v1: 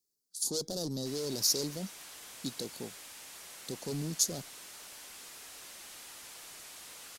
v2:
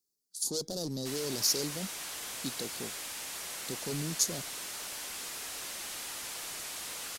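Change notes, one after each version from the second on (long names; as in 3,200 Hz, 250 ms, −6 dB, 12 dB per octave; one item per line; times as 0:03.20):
background +8.5 dB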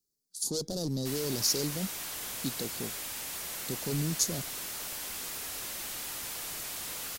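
background: remove low-pass filter 11,000 Hz 12 dB per octave
master: add low-shelf EQ 220 Hz +8.5 dB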